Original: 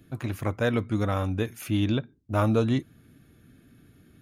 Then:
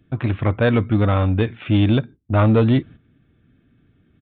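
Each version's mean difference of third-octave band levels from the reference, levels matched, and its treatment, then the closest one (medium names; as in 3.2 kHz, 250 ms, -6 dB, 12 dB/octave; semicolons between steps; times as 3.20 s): 5.0 dB: gate -45 dBFS, range -12 dB; bass shelf 140 Hz +4 dB; in parallel at -9 dB: wavefolder -21 dBFS; on the sum: resampled via 8 kHz; trim +5.5 dB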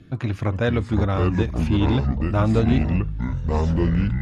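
9.0 dB: ever faster or slower copies 366 ms, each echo -5 st, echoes 3; bass shelf 200 Hz +5 dB; in parallel at +0.5 dB: compression, threshold -29 dBFS, peak gain reduction 14.5 dB; on the sum: Chebyshev low-pass 4.6 kHz, order 2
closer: first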